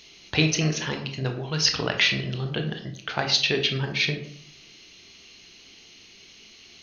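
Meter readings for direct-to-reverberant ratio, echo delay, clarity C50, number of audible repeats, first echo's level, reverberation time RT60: 4.0 dB, no echo audible, 8.5 dB, no echo audible, no echo audible, 0.60 s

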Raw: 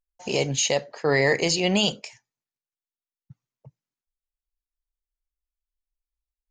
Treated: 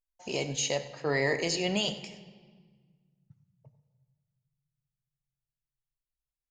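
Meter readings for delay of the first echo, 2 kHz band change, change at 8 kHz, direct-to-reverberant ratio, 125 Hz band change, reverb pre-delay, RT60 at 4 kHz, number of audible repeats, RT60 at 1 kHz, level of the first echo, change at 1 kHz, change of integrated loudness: 98 ms, −7.0 dB, −7.0 dB, 9.0 dB, −7.5 dB, 3 ms, 1.2 s, 1, 1.6 s, −16.5 dB, −7.0 dB, −7.5 dB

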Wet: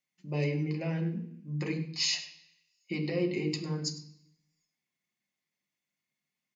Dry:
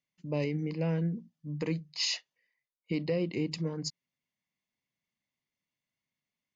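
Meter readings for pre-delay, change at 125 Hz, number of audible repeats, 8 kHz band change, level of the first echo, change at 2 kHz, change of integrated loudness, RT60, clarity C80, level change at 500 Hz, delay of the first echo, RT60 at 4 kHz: 3 ms, +1.0 dB, 1, can't be measured, −14.5 dB, +3.0 dB, +0.5 dB, 0.65 s, 11.5 dB, −1.0 dB, 101 ms, 0.75 s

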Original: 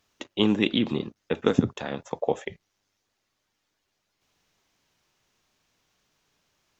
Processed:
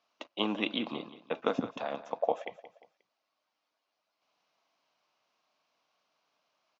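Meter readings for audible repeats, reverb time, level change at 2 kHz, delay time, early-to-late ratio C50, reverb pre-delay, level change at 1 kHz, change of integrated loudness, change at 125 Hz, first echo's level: 3, no reverb audible, −5.5 dB, 177 ms, no reverb audible, no reverb audible, −0.5 dB, −7.5 dB, −16.5 dB, −15.5 dB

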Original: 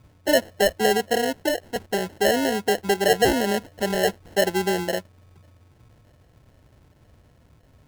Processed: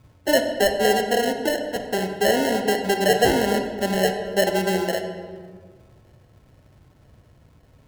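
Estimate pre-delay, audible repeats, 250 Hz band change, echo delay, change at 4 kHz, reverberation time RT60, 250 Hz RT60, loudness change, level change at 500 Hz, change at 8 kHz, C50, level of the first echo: 25 ms, no echo audible, +1.5 dB, no echo audible, +1.0 dB, 1.8 s, 2.2 s, +1.0 dB, +1.5 dB, +0.5 dB, 6.0 dB, no echo audible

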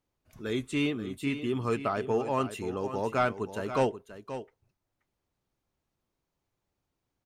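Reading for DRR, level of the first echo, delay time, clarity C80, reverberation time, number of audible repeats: no reverb audible, −11.5 dB, 530 ms, no reverb audible, no reverb audible, 1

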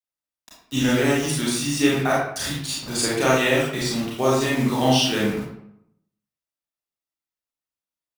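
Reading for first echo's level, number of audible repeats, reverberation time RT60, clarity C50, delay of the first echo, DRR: no echo audible, no echo audible, 0.75 s, −0.5 dB, no echo audible, −6.5 dB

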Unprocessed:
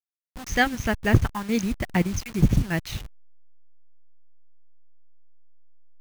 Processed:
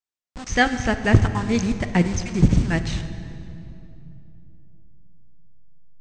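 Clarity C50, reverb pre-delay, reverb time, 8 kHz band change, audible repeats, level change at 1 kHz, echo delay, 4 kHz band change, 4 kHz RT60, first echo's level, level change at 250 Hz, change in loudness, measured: 10.0 dB, 8 ms, 2.9 s, +2.5 dB, no echo audible, +3.5 dB, no echo audible, +2.5 dB, 2.0 s, no echo audible, +4.0 dB, +3.0 dB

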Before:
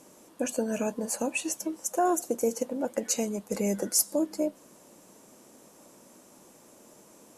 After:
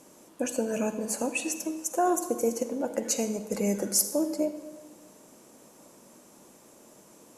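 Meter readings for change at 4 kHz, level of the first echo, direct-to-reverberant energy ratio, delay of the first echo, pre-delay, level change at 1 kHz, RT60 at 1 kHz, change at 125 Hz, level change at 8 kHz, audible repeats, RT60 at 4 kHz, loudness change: +0.5 dB, no echo audible, 9.5 dB, no echo audible, 40 ms, +0.5 dB, 1.3 s, +1.0 dB, +0.5 dB, no echo audible, 0.95 s, +0.5 dB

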